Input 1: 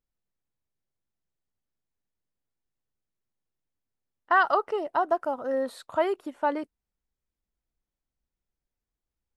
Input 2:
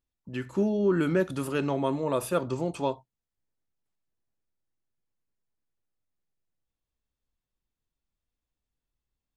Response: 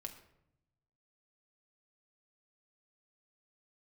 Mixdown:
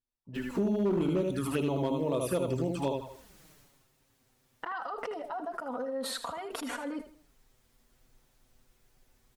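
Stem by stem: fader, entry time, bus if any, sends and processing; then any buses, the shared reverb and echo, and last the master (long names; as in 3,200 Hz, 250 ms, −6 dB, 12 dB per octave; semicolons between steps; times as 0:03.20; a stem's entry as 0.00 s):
0:03.49 −2 dB → 0:03.89 −15 dB, 0.35 s, no send, echo send −11 dB, envelope flattener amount 100%
−4.5 dB, 0.00 s, no send, echo send −4 dB, notch filter 6,800 Hz; automatic gain control gain up to 13 dB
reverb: not used
echo: repeating echo 79 ms, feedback 30%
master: flanger swept by the level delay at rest 8.2 ms, full sweep at −16 dBFS; asymmetric clip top −14 dBFS, bottom −11 dBFS; downward compressor 2.5 to 1, threshold −31 dBFS, peak gain reduction 11 dB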